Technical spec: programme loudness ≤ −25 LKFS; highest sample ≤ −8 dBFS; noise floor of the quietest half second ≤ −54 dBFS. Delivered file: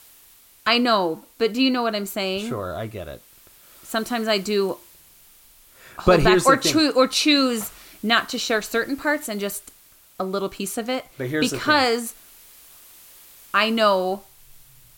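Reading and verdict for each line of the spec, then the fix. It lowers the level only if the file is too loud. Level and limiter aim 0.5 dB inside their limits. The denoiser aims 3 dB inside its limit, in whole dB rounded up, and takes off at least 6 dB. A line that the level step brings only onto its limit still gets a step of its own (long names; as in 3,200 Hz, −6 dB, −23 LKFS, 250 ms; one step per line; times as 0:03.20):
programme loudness −21.5 LKFS: out of spec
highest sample −4.5 dBFS: out of spec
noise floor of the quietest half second −52 dBFS: out of spec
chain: level −4 dB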